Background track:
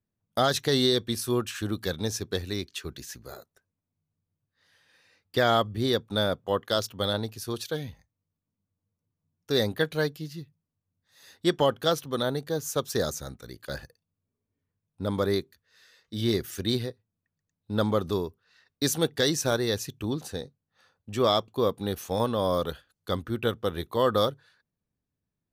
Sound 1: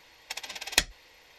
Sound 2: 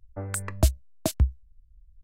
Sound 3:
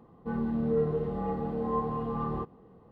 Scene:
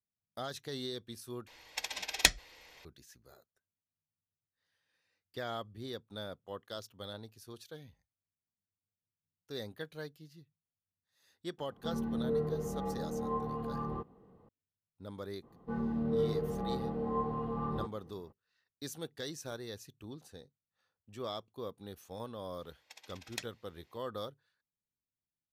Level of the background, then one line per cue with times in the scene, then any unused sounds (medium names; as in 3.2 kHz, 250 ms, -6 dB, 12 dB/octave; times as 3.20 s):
background track -17 dB
1.47 s: replace with 1 -1 dB
11.58 s: add 3 -5.5 dB
15.42 s: add 3 -4 dB, fades 0.02 s
22.60 s: add 1 -17.5 dB + high-pass 140 Hz
not used: 2